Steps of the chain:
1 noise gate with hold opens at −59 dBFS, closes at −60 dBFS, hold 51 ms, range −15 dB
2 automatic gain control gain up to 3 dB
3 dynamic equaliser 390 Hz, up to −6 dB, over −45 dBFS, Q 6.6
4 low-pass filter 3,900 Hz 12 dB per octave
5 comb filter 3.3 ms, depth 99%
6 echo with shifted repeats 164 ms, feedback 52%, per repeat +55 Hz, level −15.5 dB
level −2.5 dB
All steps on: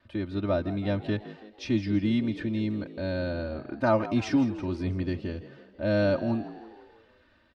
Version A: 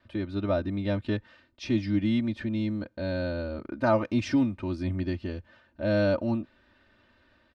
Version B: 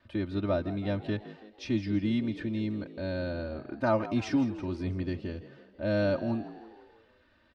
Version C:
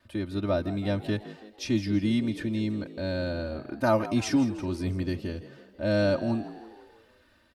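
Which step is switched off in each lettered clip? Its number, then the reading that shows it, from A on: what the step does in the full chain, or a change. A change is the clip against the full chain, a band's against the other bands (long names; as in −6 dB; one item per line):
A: 6, echo-to-direct ratio −14.0 dB to none audible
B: 2, change in momentary loudness spread −1 LU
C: 4, 4 kHz band +3.0 dB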